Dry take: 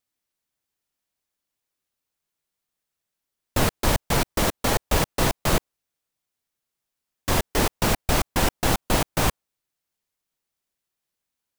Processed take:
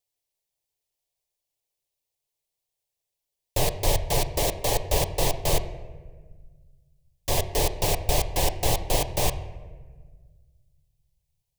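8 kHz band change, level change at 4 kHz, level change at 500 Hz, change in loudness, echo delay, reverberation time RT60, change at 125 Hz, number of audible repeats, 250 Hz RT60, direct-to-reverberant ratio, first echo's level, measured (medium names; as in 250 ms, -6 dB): -0.5 dB, -1.5 dB, -0.5 dB, -2.0 dB, no echo, 1.5 s, -2.0 dB, no echo, 2.0 s, 9.0 dB, no echo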